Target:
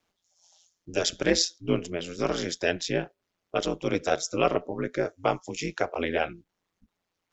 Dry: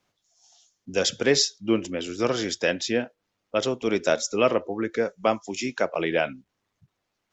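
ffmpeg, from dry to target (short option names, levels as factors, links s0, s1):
-af "aeval=exprs='val(0)*sin(2*PI*87*n/s)':c=same"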